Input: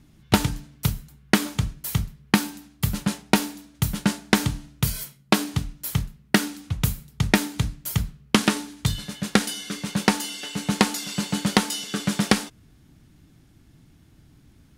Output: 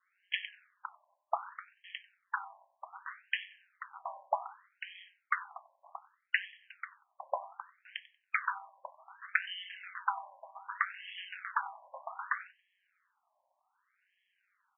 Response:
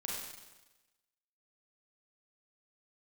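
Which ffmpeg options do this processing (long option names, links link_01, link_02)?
-filter_complex "[0:a]adynamicequalizer=threshold=0.00708:dfrequency=2100:dqfactor=3.2:tfrequency=2100:tqfactor=3.2:attack=5:release=100:ratio=0.375:range=2:mode=cutabove:tftype=bell,aeval=exprs='val(0)*sin(2*PI*93*n/s)':channel_layout=same,highshelf=frequency=6200:gain=-11,asplit=2[link_01][link_02];[link_02]adelay=93,lowpass=frequency=3700:poles=1,volume=-19.5dB,asplit=2[link_03][link_04];[link_04]adelay=93,lowpass=frequency=3700:poles=1,volume=0.31,asplit=2[link_05][link_06];[link_06]adelay=93,lowpass=frequency=3700:poles=1,volume=0.31[link_07];[link_03][link_05][link_07]amix=inputs=3:normalize=0[link_08];[link_01][link_08]amix=inputs=2:normalize=0,afftfilt=real='re*between(b*sr/1024,770*pow(2400/770,0.5+0.5*sin(2*PI*0.65*pts/sr))/1.41,770*pow(2400/770,0.5+0.5*sin(2*PI*0.65*pts/sr))*1.41)':imag='im*between(b*sr/1024,770*pow(2400/770,0.5+0.5*sin(2*PI*0.65*pts/sr))/1.41,770*pow(2400/770,0.5+0.5*sin(2*PI*0.65*pts/sr))*1.41)':win_size=1024:overlap=0.75"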